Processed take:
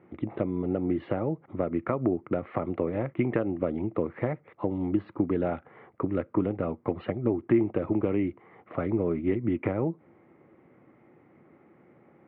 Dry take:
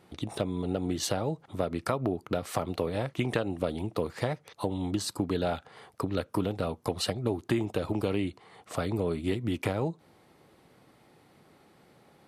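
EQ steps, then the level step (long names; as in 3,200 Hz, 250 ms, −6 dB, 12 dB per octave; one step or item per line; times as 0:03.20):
high-frequency loss of the air 480 metres
loudspeaker in its box 100–2,700 Hz, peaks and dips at 240 Hz +4 dB, 340 Hz +8 dB, 550 Hz +4 dB, 1,200 Hz +4 dB, 2,100 Hz +8 dB
low-shelf EQ 190 Hz +5 dB
−1.5 dB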